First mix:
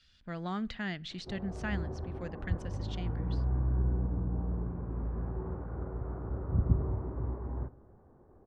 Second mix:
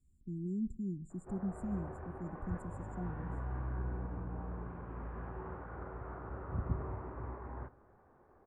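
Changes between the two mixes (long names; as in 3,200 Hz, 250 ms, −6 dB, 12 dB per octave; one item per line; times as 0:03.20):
speech: add linear-phase brick-wall band-stop 410–7,000 Hz
background: add tilt shelving filter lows −9.5 dB, about 760 Hz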